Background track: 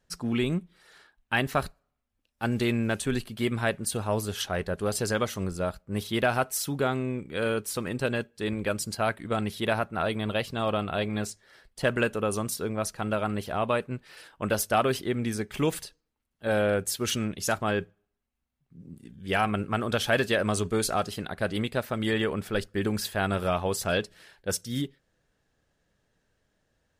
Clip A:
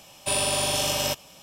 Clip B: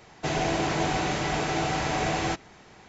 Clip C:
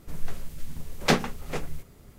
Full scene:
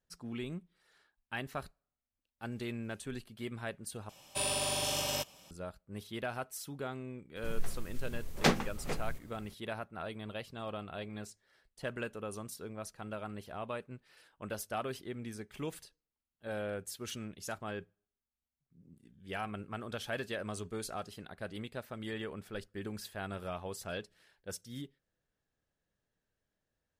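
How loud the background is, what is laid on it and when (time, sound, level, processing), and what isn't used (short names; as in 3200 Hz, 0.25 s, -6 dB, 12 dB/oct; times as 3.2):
background track -13.5 dB
4.09 replace with A -8.5 dB
7.36 add C -5 dB
not used: B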